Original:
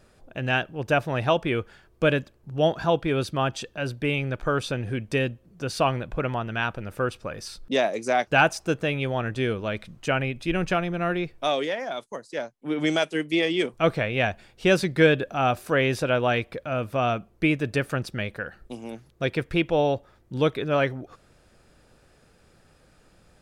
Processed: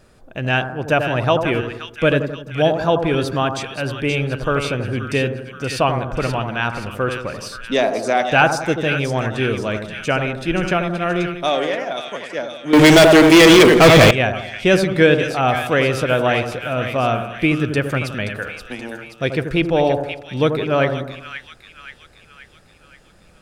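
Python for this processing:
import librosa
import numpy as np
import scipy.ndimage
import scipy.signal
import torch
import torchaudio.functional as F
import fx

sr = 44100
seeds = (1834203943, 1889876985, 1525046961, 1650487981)

y = fx.echo_split(x, sr, split_hz=1400.0, low_ms=85, high_ms=527, feedback_pct=52, wet_db=-7.0)
y = fx.leveller(y, sr, passes=5, at=(12.73, 14.11))
y = F.gain(torch.from_numpy(y), 5.0).numpy()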